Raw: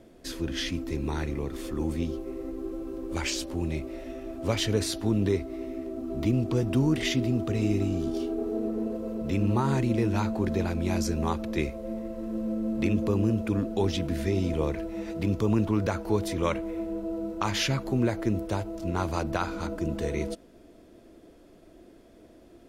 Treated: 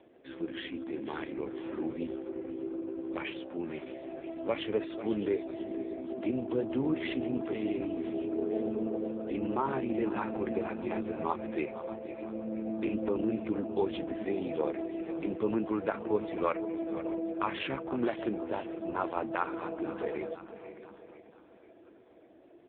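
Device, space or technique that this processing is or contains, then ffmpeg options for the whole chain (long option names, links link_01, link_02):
satellite phone: -filter_complex "[0:a]lowpass=11000,asettb=1/sr,asplit=3[link_01][link_02][link_03];[link_01]atrim=end=8.344[link_04];[link_02]atrim=start=8.34:end=9.12,asetpts=PTS-STARTPTS,afade=type=in:duration=0.004:curve=qsin,afade=type=out:start_time=0.776:duration=0.004:curve=qsin,lowshelf=frequency=350:gain=5.5[link_05];[link_03]atrim=start=9.116[link_06];[link_04][link_05]acrossfade=duration=0.004:curve1=hsin:curve2=qsin[link_07];[link_07][link_06]acrossfade=duration=0.004:curve1=qsin:curve2=hsin,highpass=330,lowpass=3000,aecho=1:1:492|984|1476|1968|2460:0.224|0.116|0.0605|0.0315|0.0164,aecho=1:1:613:0.168" -ar 8000 -c:a libopencore_amrnb -b:a 5150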